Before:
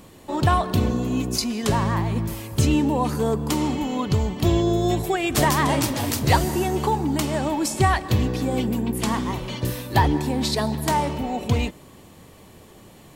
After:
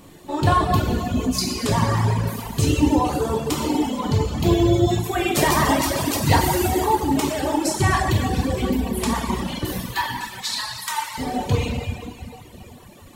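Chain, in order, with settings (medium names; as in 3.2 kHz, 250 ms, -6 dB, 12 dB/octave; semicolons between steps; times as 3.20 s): 6.41–6.81 s: treble shelf 7.4 kHz +9 dB; 9.73–11.18 s: steep high-pass 1 kHz 36 dB/octave; plate-style reverb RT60 3.1 s, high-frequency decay 0.95×, DRR -4.5 dB; reverb removal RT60 1.5 s; trim -1 dB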